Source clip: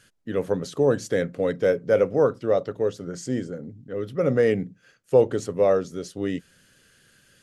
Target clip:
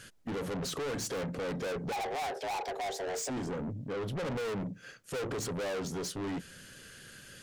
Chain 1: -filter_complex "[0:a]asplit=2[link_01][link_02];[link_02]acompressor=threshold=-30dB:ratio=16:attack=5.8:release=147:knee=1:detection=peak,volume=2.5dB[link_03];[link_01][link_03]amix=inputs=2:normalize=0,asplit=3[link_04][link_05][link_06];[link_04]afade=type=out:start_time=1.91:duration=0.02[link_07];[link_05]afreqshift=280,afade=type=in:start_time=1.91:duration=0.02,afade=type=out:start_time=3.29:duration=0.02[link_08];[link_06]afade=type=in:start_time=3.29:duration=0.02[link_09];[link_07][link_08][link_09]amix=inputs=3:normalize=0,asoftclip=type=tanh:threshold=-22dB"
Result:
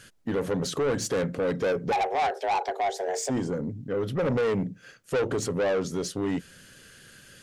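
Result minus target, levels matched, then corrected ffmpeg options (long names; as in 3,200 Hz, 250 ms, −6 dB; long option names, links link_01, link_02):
soft clipping: distortion −5 dB
-filter_complex "[0:a]asplit=2[link_01][link_02];[link_02]acompressor=threshold=-30dB:ratio=16:attack=5.8:release=147:knee=1:detection=peak,volume=2.5dB[link_03];[link_01][link_03]amix=inputs=2:normalize=0,asplit=3[link_04][link_05][link_06];[link_04]afade=type=out:start_time=1.91:duration=0.02[link_07];[link_05]afreqshift=280,afade=type=in:start_time=1.91:duration=0.02,afade=type=out:start_time=3.29:duration=0.02[link_08];[link_06]afade=type=in:start_time=3.29:duration=0.02[link_09];[link_07][link_08][link_09]amix=inputs=3:normalize=0,asoftclip=type=tanh:threshold=-33.5dB"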